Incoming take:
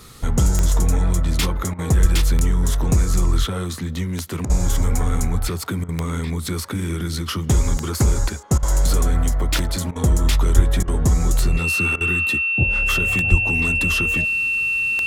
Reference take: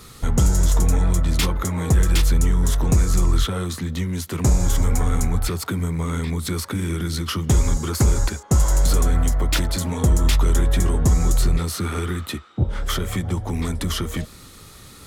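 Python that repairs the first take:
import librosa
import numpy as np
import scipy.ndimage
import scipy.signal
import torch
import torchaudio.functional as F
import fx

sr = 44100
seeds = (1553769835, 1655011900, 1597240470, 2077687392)

y = fx.fix_declick_ar(x, sr, threshold=10.0)
y = fx.notch(y, sr, hz=2700.0, q=30.0)
y = fx.fix_deplosive(y, sr, at_s=(2.01, 10.55, 13.3))
y = fx.fix_interpolate(y, sr, at_s=(1.74, 4.45, 5.84, 8.58, 9.91, 10.83, 11.96), length_ms=46.0)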